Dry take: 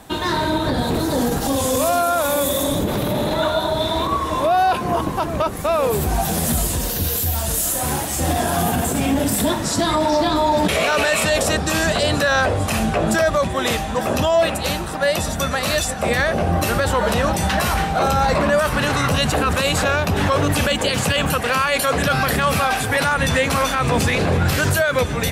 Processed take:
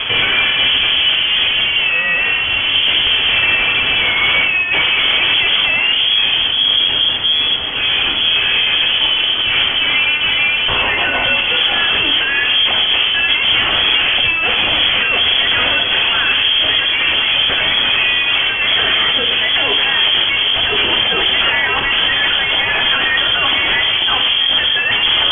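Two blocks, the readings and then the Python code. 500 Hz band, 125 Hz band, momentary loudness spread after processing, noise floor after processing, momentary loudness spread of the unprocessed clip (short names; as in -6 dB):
-8.5 dB, -12.0 dB, 2 LU, -17 dBFS, 4 LU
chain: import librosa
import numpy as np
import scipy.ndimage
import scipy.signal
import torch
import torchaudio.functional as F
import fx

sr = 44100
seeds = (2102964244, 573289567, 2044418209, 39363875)

y = fx.low_shelf(x, sr, hz=130.0, db=4.5)
y = fx.over_compress(y, sr, threshold_db=-23.0, ratio=-0.5)
y = fx.fuzz(y, sr, gain_db=39.0, gate_db=-39.0)
y = fx.freq_invert(y, sr, carrier_hz=3300)
y = fx.rev_double_slope(y, sr, seeds[0], early_s=0.84, late_s=2.9, knee_db=-20, drr_db=4.0)
y = F.gain(torch.from_numpy(y), -1.0).numpy()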